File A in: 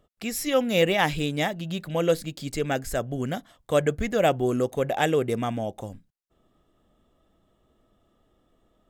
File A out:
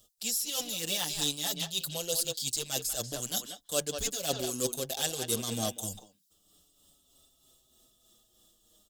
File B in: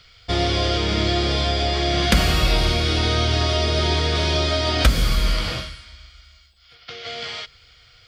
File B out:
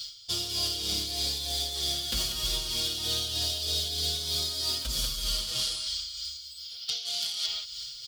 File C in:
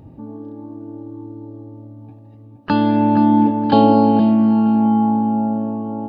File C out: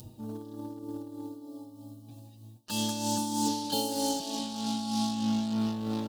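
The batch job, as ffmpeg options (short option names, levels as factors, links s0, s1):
-filter_complex "[0:a]acrossover=split=3600[s0][s1];[s1]acompressor=threshold=0.0126:ratio=4:attack=1:release=60[s2];[s0][s2]amix=inputs=2:normalize=0,asplit=2[s3][s4];[s4]adelay=190,highpass=300,lowpass=3400,asoftclip=type=hard:threshold=0.316,volume=0.398[s5];[s3][s5]amix=inputs=2:normalize=0,asplit=2[s6][s7];[s7]acrusher=bits=3:mix=0:aa=0.5,volume=0.447[s8];[s6][s8]amix=inputs=2:normalize=0,aexciter=amount=11.4:drive=8.2:freq=3300,areverse,acompressor=threshold=0.1:ratio=16,areverse,tremolo=f=3.2:d=0.48,asplit=2[s9][s10];[s10]adelay=6,afreqshift=-0.36[s11];[s9][s11]amix=inputs=2:normalize=1,volume=0.75"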